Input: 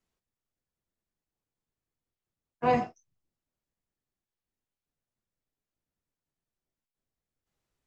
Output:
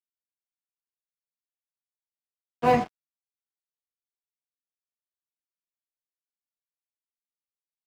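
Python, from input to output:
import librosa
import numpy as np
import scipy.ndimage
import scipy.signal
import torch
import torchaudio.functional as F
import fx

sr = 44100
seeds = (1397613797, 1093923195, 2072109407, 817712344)

y = np.sign(x) * np.maximum(np.abs(x) - 10.0 ** (-42.0 / 20.0), 0.0)
y = y * librosa.db_to_amplitude(5.0)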